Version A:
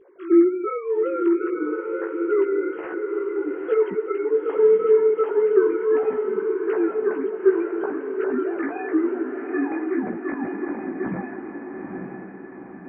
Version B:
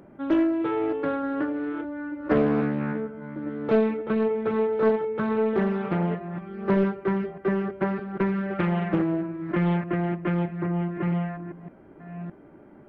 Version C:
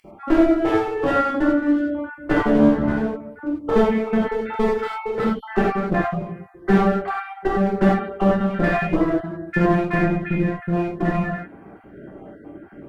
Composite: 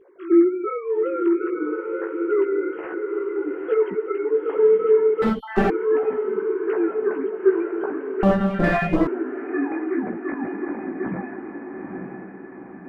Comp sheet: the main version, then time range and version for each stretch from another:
A
0:05.22–0:05.70: punch in from C
0:08.23–0:09.07: punch in from C
not used: B

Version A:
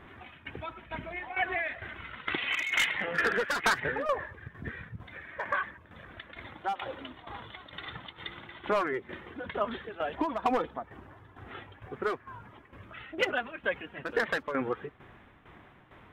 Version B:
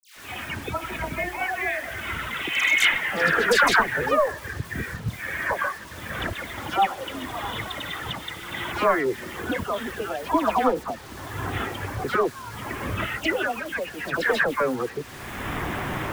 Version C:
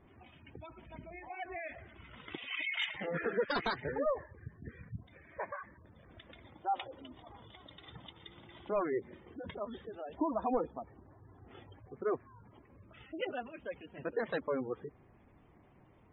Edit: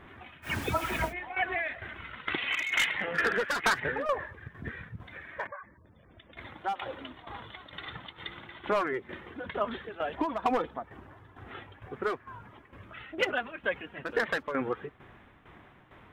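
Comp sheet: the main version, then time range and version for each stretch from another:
A
0:00.47–0:01.09: punch in from B, crossfade 0.10 s
0:05.47–0:06.37: punch in from C

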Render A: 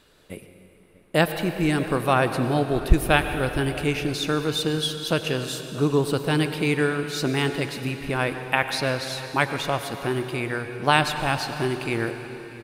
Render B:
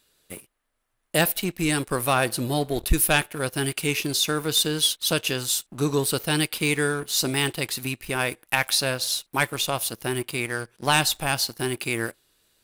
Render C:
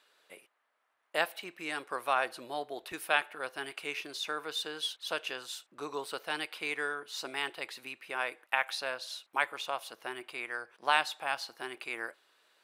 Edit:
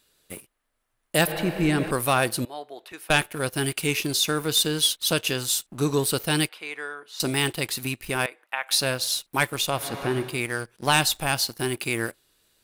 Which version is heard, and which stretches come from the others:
B
0:01.27–0:01.91: punch in from A
0:02.45–0:03.10: punch in from C
0:06.49–0:07.20: punch in from C
0:08.26–0:08.71: punch in from C
0:09.81–0:10.30: punch in from A, crossfade 0.24 s

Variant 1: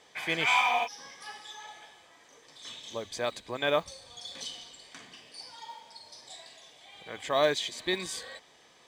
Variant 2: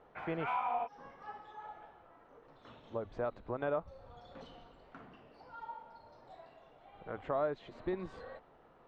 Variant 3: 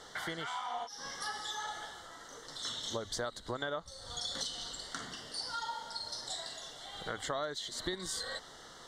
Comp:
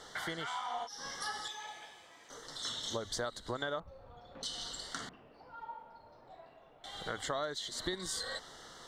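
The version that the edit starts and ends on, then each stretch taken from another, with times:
3
0:01.48–0:02.30: punch in from 1
0:03.80–0:04.43: punch in from 2
0:05.09–0:06.84: punch in from 2

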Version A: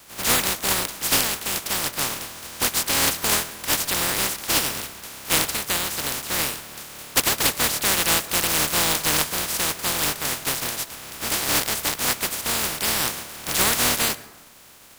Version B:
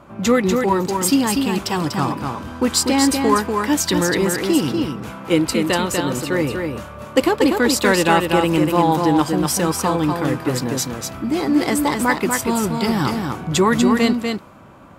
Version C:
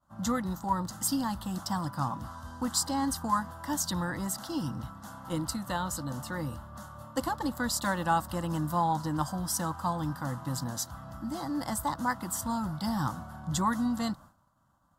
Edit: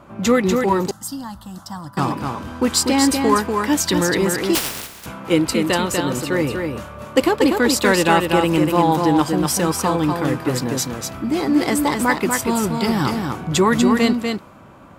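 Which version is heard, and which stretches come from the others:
B
0:00.91–0:01.97: punch in from C
0:04.55–0:05.06: punch in from A

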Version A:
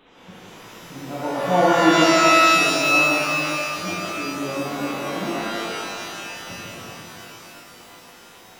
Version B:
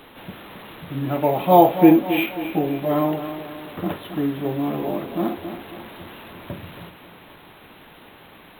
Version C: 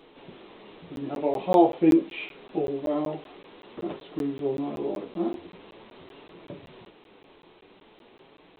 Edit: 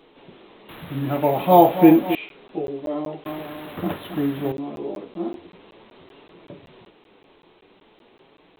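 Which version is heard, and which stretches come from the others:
C
0:00.69–0:02.15: punch in from B
0:03.26–0:04.52: punch in from B
not used: A

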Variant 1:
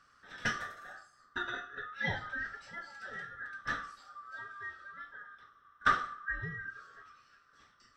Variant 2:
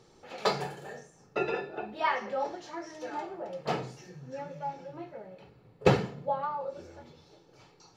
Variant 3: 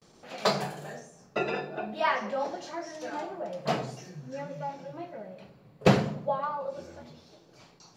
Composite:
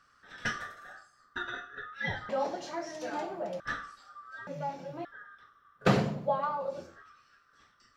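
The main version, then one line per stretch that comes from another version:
1
0:02.29–0:03.60: punch in from 3
0:04.47–0:05.05: punch in from 3
0:05.87–0:06.88: punch in from 3, crossfade 0.24 s
not used: 2

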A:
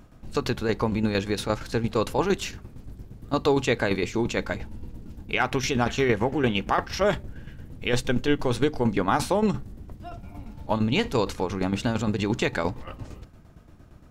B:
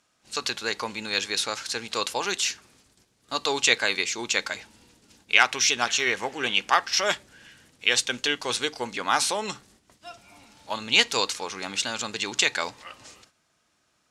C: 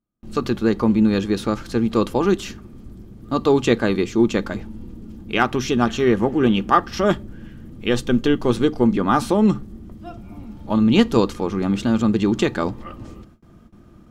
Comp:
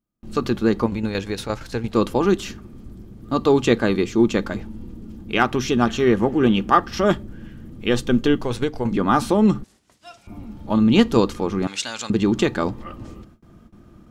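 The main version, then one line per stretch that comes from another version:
C
0:00.86–0:01.94: punch in from A
0:08.44–0:08.91: punch in from A
0:09.64–0:10.27: punch in from B
0:11.67–0:12.10: punch in from B

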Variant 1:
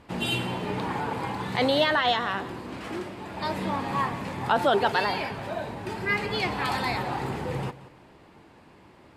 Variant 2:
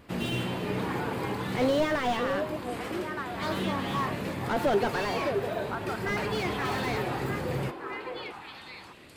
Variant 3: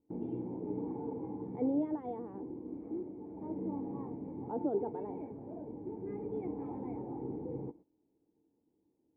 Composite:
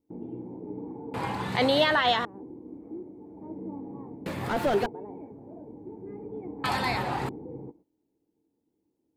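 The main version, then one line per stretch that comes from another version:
3
0:01.14–0:02.25: punch in from 1
0:04.26–0:04.86: punch in from 2
0:06.64–0:07.29: punch in from 1

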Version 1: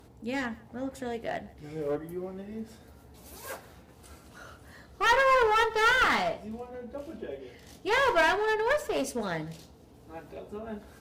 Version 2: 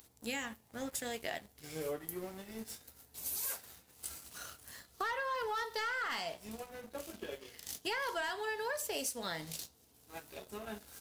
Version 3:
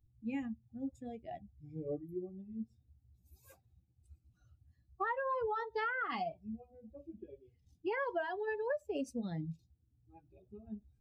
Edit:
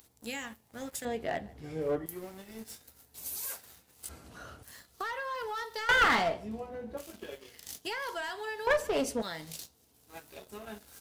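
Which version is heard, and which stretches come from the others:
2
0:01.05–0:02.06: punch in from 1
0:04.09–0:04.63: punch in from 1
0:05.89–0:06.97: punch in from 1
0:08.67–0:09.22: punch in from 1
not used: 3

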